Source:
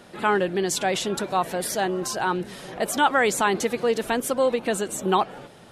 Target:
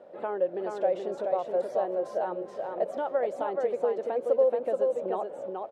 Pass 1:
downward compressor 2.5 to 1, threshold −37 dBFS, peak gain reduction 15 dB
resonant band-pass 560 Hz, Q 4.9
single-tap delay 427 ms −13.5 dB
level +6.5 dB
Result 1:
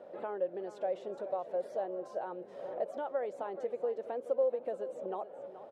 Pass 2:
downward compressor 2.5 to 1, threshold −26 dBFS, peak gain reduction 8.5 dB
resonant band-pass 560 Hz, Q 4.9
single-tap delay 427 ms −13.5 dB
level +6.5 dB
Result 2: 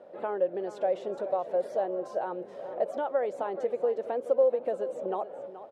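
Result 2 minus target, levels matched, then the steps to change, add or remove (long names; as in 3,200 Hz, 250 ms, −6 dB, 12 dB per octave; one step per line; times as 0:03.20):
echo-to-direct −9.5 dB
change: single-tap delay 427 ms −4 dB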